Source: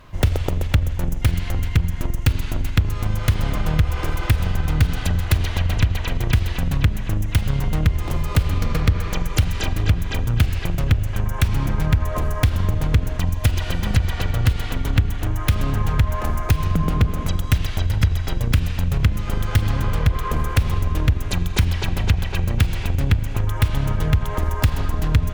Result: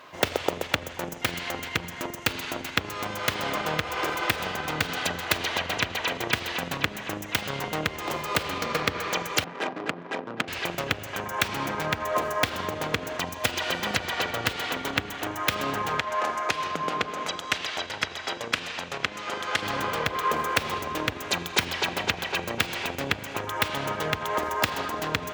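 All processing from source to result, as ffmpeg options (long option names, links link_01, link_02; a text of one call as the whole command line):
ffmpeg -i in.wav -filter_complex "[0:a]asettb=1/sr,asplit=3[link_01][link_02][link_03];[link_01]atrim=end=9.444[link_04];[link_02]atrim=start=9.44:end=10.48,asetpts=PTS-STARTPTS,afade=type=in:duration=0.004:curve=qsin,afade=type=out:start_time=1.036:duration=0.004:curve=qsin,highpass=frequency=160:width=0.5412,highpass=frequency=160:width=1.3066,highshelf=frequency=6400:gain=-9.5,adynamicsmooth=sensitivity=2:basefreq=670[link_05];[link_03]atrim=start=10.476[link_06];[link_04][link_05]acrossfade=duration=0.004:curve1=hsin:curve2=qsin[link_07];[link_07][link_06]acrossfade=duration=0.004:curve1=qsin:curve2=hsin,asettb=1/sr,asplit=3[link_08][link_09][link_10];[link_08]atrim=end=15.994[link_11];[link_09]atrim=start=15.99:end=19.63,asetpts=PTS-STARTPTS,afade=type=in:duration=0.004:curve=qsin,afade=type=out:start_time=3.636:duration=0.004:curve=qsin,lowpass=8100,lowshelf=frequency=250:gain=-10.5[link_12];[link_10]atrim=start=19.626[link_13];[link_11][link_12]acrossfade=duration=0.004:curve1=hsin:curve2=qsin[link_14];[link_14][link_13]acrossfade=duration=0.004:curve1=qsin:curve2=hsin,highpass=410,equalizer=frequency=11000:width=1.2:gain=-7.5,volume=3.5dB" out.wav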